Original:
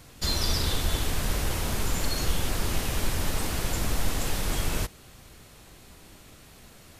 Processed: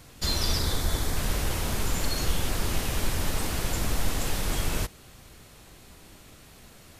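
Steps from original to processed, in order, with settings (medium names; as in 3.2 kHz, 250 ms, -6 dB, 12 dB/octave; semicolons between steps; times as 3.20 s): 0.59–1.17 s: peaking EQ 2.8 kHz -10 dB 0.33 oct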